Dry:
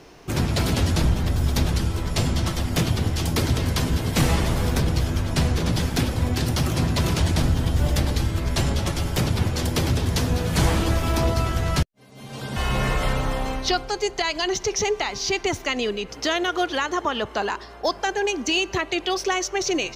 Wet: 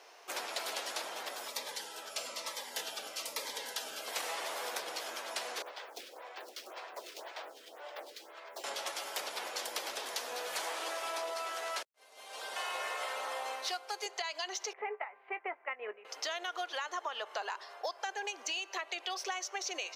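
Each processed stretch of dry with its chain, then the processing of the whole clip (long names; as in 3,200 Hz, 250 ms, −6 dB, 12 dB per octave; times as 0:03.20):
0:01.48–0:04.08: notch comb filter 360 Hz + phaser whose notches keep moving one way falling 1.1 Hz
0:05.62–0:08.64: running median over 5 samples + four-pole ladder high-pass 270 Hz, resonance 30% + phaser with staggered stages 1.9 Hz
0:10.73–0:14.06: variable-slope delta modulation 64 kbit/s + high-pass filter 240 Hz 24 dB per octave
0:14.73–0:16.05: noise gate −25 dBFS, range −12 dB + Butterworth low-pass 2,300 Hz 48 dB per octave + double-tracking delay 19 ms −13 dB
whole clip: high-pass filter 550 Hz 24 dB per octave; downward compressor, threshold −29 dBFS; level −5.5 dB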